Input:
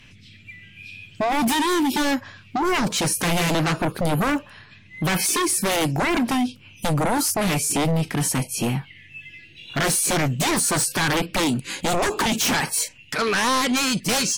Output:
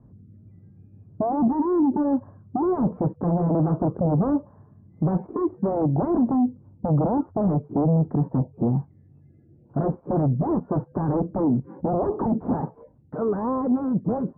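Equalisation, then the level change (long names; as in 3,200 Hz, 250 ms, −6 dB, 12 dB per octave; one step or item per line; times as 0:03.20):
high-pass filter 51 Hz
Bessel low-pass filter 570 Hz, order 8
+2.5 dB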